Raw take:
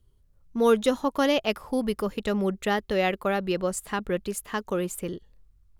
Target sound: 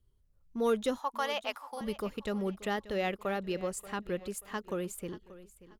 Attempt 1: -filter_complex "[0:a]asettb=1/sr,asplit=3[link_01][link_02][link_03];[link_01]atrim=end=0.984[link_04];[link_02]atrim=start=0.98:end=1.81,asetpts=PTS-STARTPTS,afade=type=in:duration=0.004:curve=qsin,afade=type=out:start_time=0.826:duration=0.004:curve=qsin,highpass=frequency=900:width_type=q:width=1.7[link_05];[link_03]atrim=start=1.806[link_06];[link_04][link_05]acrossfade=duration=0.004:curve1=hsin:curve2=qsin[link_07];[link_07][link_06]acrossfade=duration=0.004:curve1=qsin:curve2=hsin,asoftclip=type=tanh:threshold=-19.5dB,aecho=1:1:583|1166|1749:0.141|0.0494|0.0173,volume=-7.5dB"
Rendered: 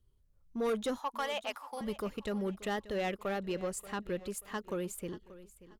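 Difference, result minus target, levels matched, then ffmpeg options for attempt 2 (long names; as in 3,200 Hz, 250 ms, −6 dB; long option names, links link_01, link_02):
soft clipping: distortion +14 dB
-filter_complex "[0:a]asettb=1/sr,asplit=3[link_01][link_02][link_03];[link_01]atrim=end=0.984[link_04];[link_02]atrim=start=0.98:end=1.81,asetpts=PTS-STARTPTS,afade=type=in:duration=0.004:curve=qsin,afade=type=out:start_time=0.826:duration=0.004:curve=qsin,highpass=frequency=900:width_type=q:width=1.7[link_05];[link_03]atrim=start=1.806[link_06];[link_04][link_05]acrossfade=duration=0.004:curve1=hsin:curve2=qsin[link_07];[link_07][link_06]acrossfade=duration=0.004:curve1=qsin:curve2=hsin,asoftclip=type=tanh:threshold=-9.5dB,aecho=1:1:583|1166|1749:0.141|0.0494|0.0173,volume=-7.5dB"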